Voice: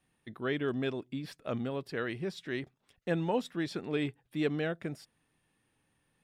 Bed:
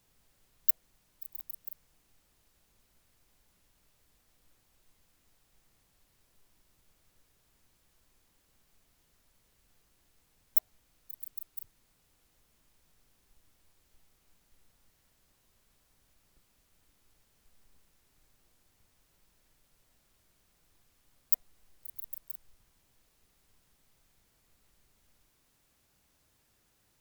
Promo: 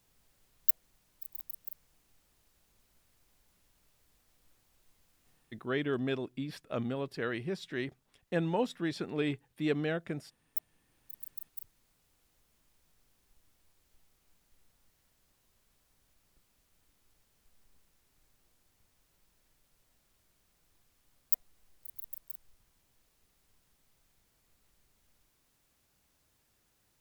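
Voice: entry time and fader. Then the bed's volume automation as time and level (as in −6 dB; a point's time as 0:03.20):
5.25 s, 0.0 dB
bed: 0:05.30 −0.5 dB
0:05.83 −10.5 dB
0:10.44 −10.5 dB
0:11.17 −2 dB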